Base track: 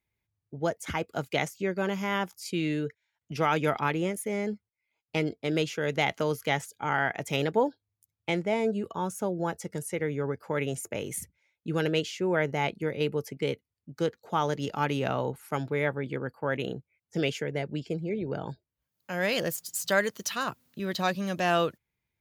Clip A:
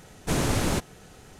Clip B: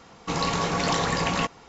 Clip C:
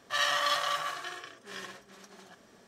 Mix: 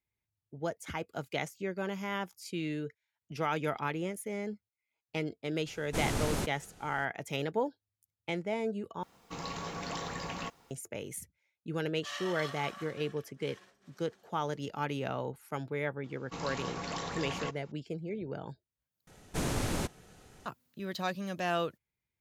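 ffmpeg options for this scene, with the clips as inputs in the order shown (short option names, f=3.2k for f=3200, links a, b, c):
-filter_complex "[1:a]asplit=2[a][b];[2:a]asplit=2[c][d];[0:a]volume=-6.5dB[e];[c]acrusher=bits=8:mix=0:aa=0.000001[f];[e]asplit=3[g][h][i];[g]atrim=end=9.034[j];[f]atrim=end=1.68,asetpts=PTS-STARTPTS,volume=-14dB[k];[h]atrim=start=10.706:end=19.074[l];[b]atrim=end=1.39,asetpts=PTS-STARTPTS,volume=-7.5dB[m];[i]atrim=start=20.456[n];[a]atrim=end=1.39,asetpts=PTS-STARTPTS,volume=-7.5dB,afade=t=in:d=0.004:c=hsin,afade=t=out:st=1.386:d=0.004:c=hsin,adelay=5660[o];[3:a]atrim=end=2.67,asetpts=PTS-STARTPTS,volume=-13.5dB,afade=t=in:d=0.004:c=hsin,afade=t=out:st=2.666:d=0.004:c=hsin,adelay=11930[p];[d]atrim=end=1.68,asetpts=PTS-STARTPTS,volume=-13.5dB,afade=t=in:d=0.004:c=hsin,afade=t=out:st=1.676:d=0.004:c=hsin,adelay=707364S[q];[j][k]acrossfade=d=0.004:c1=hsin:c2=hsin[r];[r][l]acrossfade=d=0.004:c1=hsin:c2=hsin[s];[s][m]acrossfade=d=0.004:c1=hsin:c2=hsin[t];[t][n]acrossfade=d=0.004:c1=hsin:c2=hsin[u];[u][o][p][q]amix=inputs=4:normalize=0"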